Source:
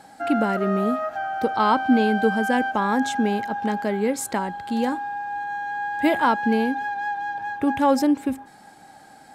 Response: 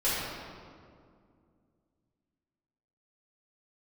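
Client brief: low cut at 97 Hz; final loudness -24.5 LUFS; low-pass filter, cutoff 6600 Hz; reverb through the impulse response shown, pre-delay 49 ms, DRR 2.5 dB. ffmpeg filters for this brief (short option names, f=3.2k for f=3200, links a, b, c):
-filter_complex "[0:a]highpass=97,lowpass=6.6k,asplit=2[a][b];[1:a]atrim=start_sample=2205,adelay=49[c];[b][c]afir=irnorm=-1:irlink=0,volume=-14dB[d];[a][d]amix=inputs=2:normalize=0,volume=-3.5dB"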